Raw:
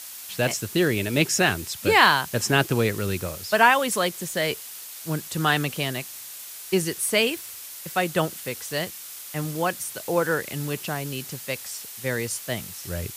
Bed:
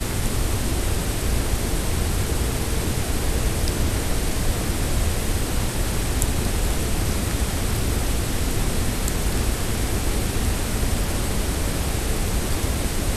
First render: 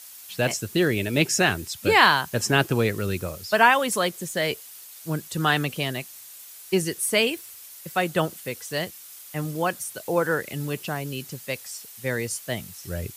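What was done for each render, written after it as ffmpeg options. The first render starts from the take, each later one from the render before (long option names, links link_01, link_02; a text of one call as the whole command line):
ffmpeg -i in.wav -af "afftdn=noise_reduction=7:noise_floor=-40" out.wav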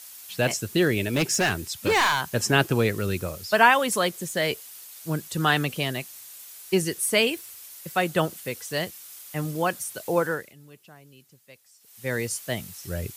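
ffmpeg -i in.wav -filter_complex "[0:a]asettb=1/sr,asplit=3[link_01][link_02][link_03];[link_01]atrim=end=1.014[link_04];[link_02]atrim=start=1.01:end=2.34,asetpts=PTS-STARTPTS,afade=type=in:duration=0.004:curve=qsin,afade=type=out:start_time=1.326:duration=0.004:curve=qsin,asoftclip=type=hard:threshold=-18dB[link_05];[link_03]atrim=start=2.336[link_06];[link_04][link_05]acrossfade=duration=0.004:curve1=hsin:curve2=qsin[link_07];[link_07][link_06]acrossfade=duration=0.004:curve1=qsin:curve2=hsin,asplit=3[link_08][link_09][link_10];[link_08]atrim=end=10.54,asetpts=PTS-STARTPTS,afade=type=out:start_time=10.18:duration=0.36:silence=0.1[link_11];[link_09]atrim=start=10.54:end=11.8,asetpts=PTS-STARTPTS,volume=-20dB[link_12];[link_10]atrim=start=11.8,asetpts=PTS-STARTPTS,afade=type=in:duration=0.36:silence=0.1[link_13];[link_11][link_12][link_13]concat=n=3:v=0:a=1" out.wav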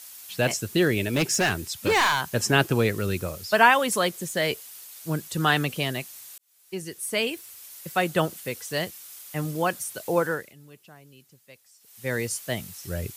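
ffmpeg -i in.wav -filter_complex "[0:a]asplit=2[link_01][link_02];[link_01]atrim=end=6.38,asetpts=PTS-STARTPTS,afade=type=out:start_time=6.376:duration=0.004:curve=hsin[link_03];[link_02]atrim=start=6.38,asetpts=PTS-STARTPTS,afade=type=in:duration=1.39[link_04];[link_03][link_04]concat=n=2:v=0:a=1" out.wav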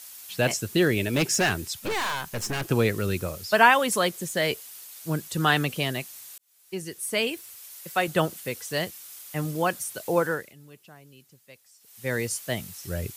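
ffmpeg -i in.wav -filter_complex "[0:a]asettb=1/sr,asplit=3[link_01][link_02][link_03];[link_01]atrim=end=1.794[link_04];[link_02]atrim=start=1.79:end=2.68,asetpts=PTS-STARTPTS,afade=type=in:duration=0.004:curve=qsin,afade=type=out:start_time=0.886:duration=0.004:curve=qsin,aeval=exprs='(tanh(20*val(0)+0.5)-tanh(0.5))/20':channel_layout=same[link_05];[link_03]atrim=start=2.676[link_06];[link_04][link_05]acrossfade=duration=0.004:curve1=hsin:curve2=qsin[link_07];[link_07][link_06]acrossfade=duration=0.004:curve1=qsin:curve2=hsin,asettb=1/sr,asplit=3[link_08][link_09][link_10];[link_08]atrim=end=7.564[link_11];[link_09]atrim=start=7.56:end=8.08,asetpts=PTS-STARTPTS,afade=type=in:duration=0.004:curve=qsin,afade=type=out:start_time=0.516:duration=0.004:curve=qsin,highpass=frequency=290:poles=1[link_12];[link_10]atrim=start=8.076[link_13];[link_11][link_12]acrossfade=duration=0.004:curve1=hsin:curve2=qsin[link_14];[link_14][link_13]acrossfade=duration=0.004:curve1=qsin:curve2=hsin" out.wav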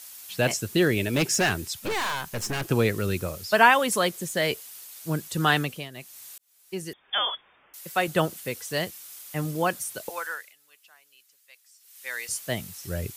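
ffmpeg -i in.wav -filter_complex "[0:a]asettb=1/sr,asplit=3[link_01][link_02][link_03];[link_01]atrim=end=6.934[link_04];[link_02]atrim=start=6.93:end=7.74,asetpts=PTS-STARTPTS,afade=type=in:duration=0.004:curve=qsin,afade=type=out:start_time=0.806:duration=0.004:curve=qsin,lowpass=frequency=3100:width_type=q:width=0.5098,lowpass=frequency=3100:width_type=q:width=0.6013,lowpass=frequency=3100:width_type=q:width=0.9,lowpass=frequency=3100:width_type=q:width=2.563,afreqshift=-3700[link_05];[link_03]atrim=start=7.736[link_06];[link_04][link_05]acrossfade=duration=0.004:curve1=hsin:curve2=qsin[link_07];[link_07][link_06]acrossfade=duration=0.004:curve1=qsin:curve2=hsin,asettb=1/sr,asplit=3[link_08][link_09][link_10];[link_08]atrim=end=10.094[link_11];[link_09]atrim=start=10.09:end=12.29,asetpts=PTS-STARTPTS,afade=type=in:duration=0.004:curve=qsin,afade=type=out:start_time=2.196:duration=0.004:curve=qsin,highpass=1300[link_12];[link_10]atrim=start=12.286[link_13];[link_11][link_12]acrossfade=duration=0.004:curve1=hsin:curve2=qsin[link_14];[link_14][link_13]acrossfade=duration=0.004:curve1=qsin:curve2=hsin,asplit=3[link_15][link_16][link_17];[link_15]atrim=end=5.9,asetpts=PTS-STARTPTS,afade=type=out:start_time=5.55:duration=0.35:silence=0.16788[link_18];[link_16]atrim=start=5.9:end=5.91,asetpts=PTS-STARTPTS,volume=-15.5dB[link_19];[link_17]atrim=start=5.91,asetpts=PTS-STARTPTS,afade=type=in:duration=0.35:silence=0.16788[link_20];[link_18][link_19][link_20]concat=n=3:v=0:a=1" out.wav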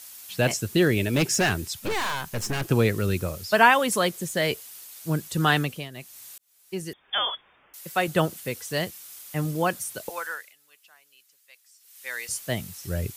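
ffmpeg -i in.wav -af "lowshelf=frequency=210:gain=4" out.wav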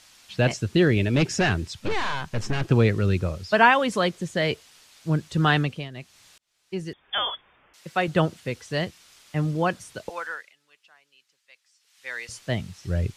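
ffmpeg -i in.wav -af "lowpass=4800,lowshelf=frequency=160:gain=6" out.wav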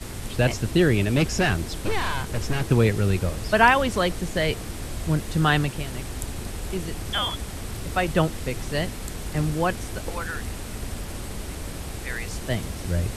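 ffmpeg -i in.wav -i bed.wav -filter_complex "[1:a]volume=-10dB[link_01];[0:a][link_01]amix=inputs=2:normalize=0" out.wav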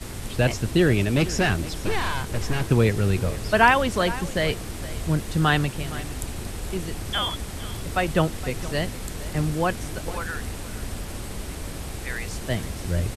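ffmpeg -i in.wav -af "aecho=1:1:465:0.15" out.wav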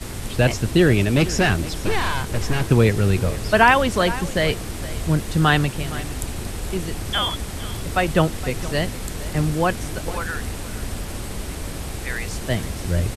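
ffmpeg -i in.wav -af "volume=3.5dB,alimiter=limit=-2dB:level=0:latency=1" out.wav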